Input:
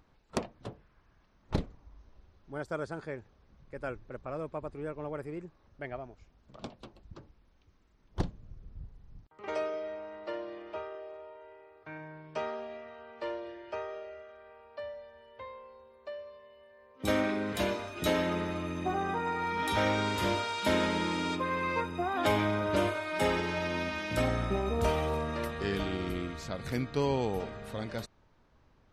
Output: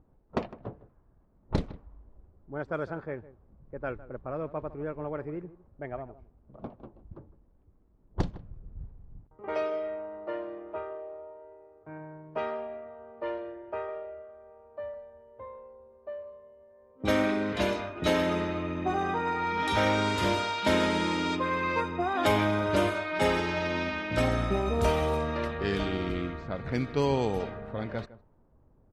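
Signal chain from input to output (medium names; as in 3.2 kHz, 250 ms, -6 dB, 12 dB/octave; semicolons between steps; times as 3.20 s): echo from a far wall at 27 m, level -17 dB; crackle 100 per s -57 dBFS; level-controlled noise filter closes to 600 Hz, open at -25.5 dBFS; trim +3 dB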